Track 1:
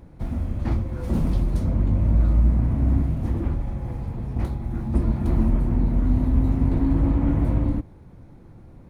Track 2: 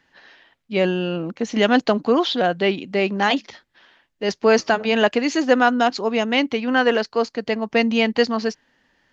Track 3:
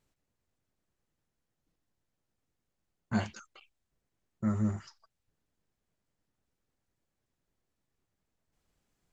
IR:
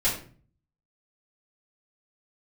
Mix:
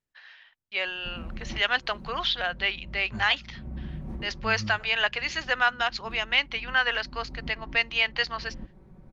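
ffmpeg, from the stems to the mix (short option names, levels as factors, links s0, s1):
-filter_complex "[0:a]highshelf=f=4200:g=-9,aecho=1:1:5.3:0.78,acompressor=threshold=0.0501:ratio=6,adelay=850,volume=0.501[s0];[1:a]highpass=1500,agate=range=0.02:threshold=0.00141:ratio=16:detection=peak,lowpass=3800,volume=1.12,asplit=2[s1][s2];[2:a]asubboost=boost=3:cutoff=240,volume=0.251[s3];[s2]apad=whole_len=430008[s4];[s0][s4]sidechaincompress=threshold=0.02:ratio=8:attack=16:release=390[s5];[s5][s1][s3]amix=inputs=3:normalize=0"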